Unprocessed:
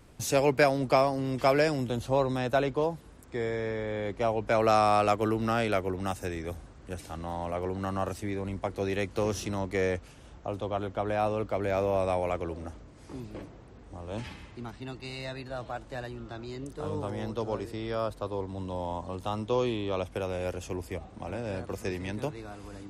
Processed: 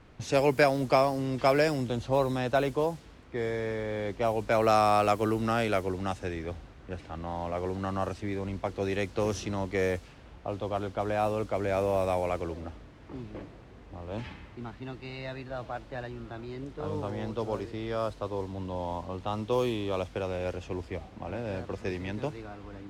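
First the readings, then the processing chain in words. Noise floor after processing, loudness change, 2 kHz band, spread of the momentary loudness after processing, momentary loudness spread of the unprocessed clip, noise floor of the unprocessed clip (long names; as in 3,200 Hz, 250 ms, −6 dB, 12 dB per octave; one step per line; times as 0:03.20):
−51 dBFS, 0.0 dB, 0.0 dB, 16 LU, 16 LU, −51 dBFS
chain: background noise white −54 dBFS
low-pass that shuts in the quiet parts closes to 2,000 Hz, open at −22 dBFS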